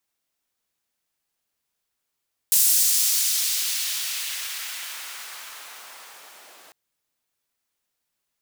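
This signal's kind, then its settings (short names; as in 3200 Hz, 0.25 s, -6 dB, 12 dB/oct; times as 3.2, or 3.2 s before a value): swept filtered noise pink, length 4.20 s highpass, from 8000 Hz, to 560 Hz, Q 0.91, exponential, gain ramp -38 dB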